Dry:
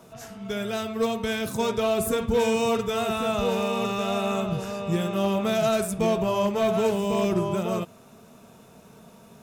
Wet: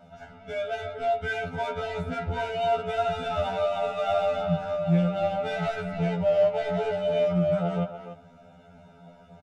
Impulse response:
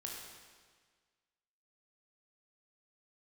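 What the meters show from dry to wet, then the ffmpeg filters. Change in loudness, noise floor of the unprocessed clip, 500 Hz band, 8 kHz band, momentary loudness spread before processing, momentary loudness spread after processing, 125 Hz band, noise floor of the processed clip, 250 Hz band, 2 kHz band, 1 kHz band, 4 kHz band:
-1.5 dB, -51 dBFS, -1.0 dB, under -15 dB, 7 LU, 8 LU, +1.5 dB, -53 dBFS, -4.5 dB, -0.5 dB, -0.5 dB, -6.5 dB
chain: -filter_complex "[0:a]acrossover=split=190|960|3400[a][b][c][d];[d]acompressor=threshold=-56dB:ratio=6[e];[a][b][c][e]amix=inputs=4:normalize=0,aecho=1:1:1.4:0.86,asplit=2[f][g];[g]adelay=290,highpass=300,lowpass=3.4k,asoftclip=type=hard:threshold=-17.5dB,volume=-9dB[h];[f][h]amix=inputs=2:normalize=0,adynamicsmooth=sensitivity=3.5:basefreq=2.9k,asoftclip=type=tanh:threshold=-12.5dB,asuperstop=centerf=1100:order=4:qfactor=5.9,afftfilt=real='re*2*eq(mod(b,4),0)':imag='im*2*eq(mod(b,4),0)':win_size=2048:overlap=0.75"

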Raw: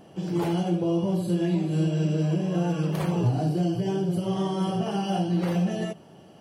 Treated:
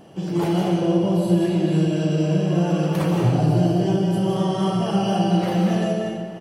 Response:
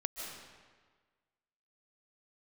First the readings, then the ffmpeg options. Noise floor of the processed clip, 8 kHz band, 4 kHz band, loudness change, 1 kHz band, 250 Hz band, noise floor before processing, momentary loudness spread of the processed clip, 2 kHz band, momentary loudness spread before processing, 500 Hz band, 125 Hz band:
-32 dBFS, +5.5 dB, +6.5 dB, +5.5 dB, +6.5 dB, +5.5 dB, -50 dBFS, 3 LU, +6.0 dB, 3 LU, +6.5 dB, +5.0 dB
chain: -filter_complex "[0:a]asplit=2[a][b];[b]adelay=641.4,volume=-17dB,highshelf=f=4k:g=-14.4[c];[a][c]amix=inputs=2:normalize=0[d];[1:a]atrim=start_sample=2205[e];[d][e]afir=irnorm=-1:irlink=0,volume=5dB"

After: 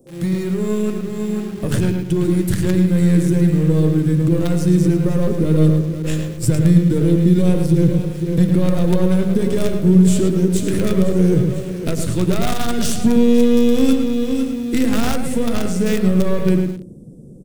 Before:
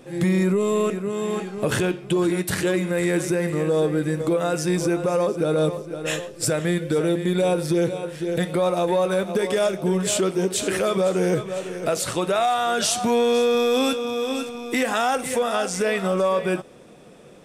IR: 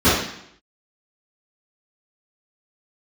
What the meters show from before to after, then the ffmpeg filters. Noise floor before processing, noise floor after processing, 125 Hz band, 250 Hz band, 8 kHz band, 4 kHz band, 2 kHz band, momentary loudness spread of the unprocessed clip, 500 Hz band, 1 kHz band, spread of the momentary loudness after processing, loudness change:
-45 dBFS, -31 dBFS, +12.5 dB, +9.5 dB, -1.5 dB, -2.5 dB, -4.0 dB, 6 LU, 0.0 dB, -6.0 dB, 8 LU, +5.5 dB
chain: -filter_complex "[0:a]bandreject=f=50:t=h:w=6,bandreject=f=100:t=h:w=6,bandreject=f=150:t=h:w=6,bandreject=f=200:t=h:w=6,bandreject=f=250:t=h:w=6,bandreject=f=300:t=h:w=6,bandreject=f=350:t=h:w=6,bandreject=f=400:t=h:w=6,bandreject=f=450:t=h:w=6,asplit=2[a][b];[b]adelay=109,lowpass=f=3.7k:p=1,volume=-4.5dB,asplit=2[c][d];[d]adelay=109,lowpass=f=3.7k:p=1,volume=0.33,asplit=2[e][f];[f]adelay=109,lowpass=f=3.7k:p=1,volume=0.33,asplit=2[g][h];[h]adelay=109,lowpass=f=3.7k:p=1,volume=0.33[i];[a][c][e][g][i]amix=inputs=5:normalize=0,acrossover=split=130|610|7100[j][k][l][m];[l]acrusher=bits=4:dc=4:mix=0:aa=0.000001[n];[j][k][n][m]amix=inputs=4:normalize=0,asubboost=boost=7.5:cutoff=240,volume=-1dB"

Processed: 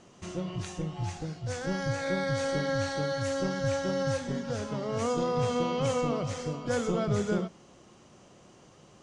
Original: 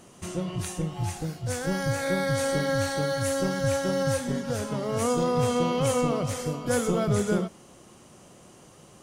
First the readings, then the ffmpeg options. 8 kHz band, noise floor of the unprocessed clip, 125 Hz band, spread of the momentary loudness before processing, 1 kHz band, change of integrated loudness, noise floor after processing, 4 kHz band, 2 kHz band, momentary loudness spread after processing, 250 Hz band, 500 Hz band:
-8.0 dB, -52 dBFS, -4.0 dB, 7 LU, -3.5 dB, -4.0 dB, -56 dBFS, -3.5 dB, -3.5 dB, 7 LU, -4.0 dB, -3.5 dB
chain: -af "lowpass=f=6.8k:w=0.5412,lowpass=f=6.8k:w=1.3066,bandreject=f=82.82:t=h:w=4,bandreject=f=165.64:t=h:w=4,bandreject=f=248.46:t=h:w=4,volume=-3.5dB"

